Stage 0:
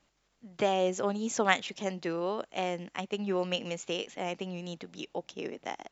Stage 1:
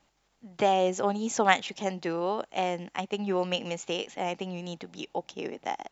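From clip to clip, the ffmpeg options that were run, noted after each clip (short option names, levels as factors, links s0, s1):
-af "equalizer=f=820:t=o:w=0.3:g=6.5,volume=1.26"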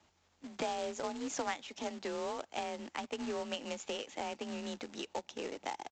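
-af "acompressor=threshold=0.0141:ratio=3,afreqshift=36,aresample=16000,acrusher=bits=2:mode=log:mix=0:aa=0.000001,aresample=44100,volume=0.891"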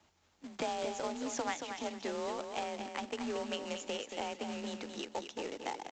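-af "aecho=1:1:227|454|681:0.447|0.116|0.0302"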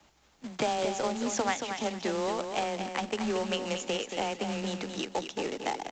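-af "afreqshift=-22,volume=2.24"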